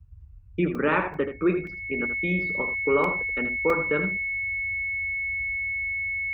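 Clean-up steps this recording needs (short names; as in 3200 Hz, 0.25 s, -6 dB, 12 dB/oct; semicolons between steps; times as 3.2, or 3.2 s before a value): notch 2200 Hz, Q 30; interpolate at 0.75/1.14/1.67/3.04/3.7, 2.6 ms; noise print and reduce 30 dB; inverse comb 80 ms -9.5 dB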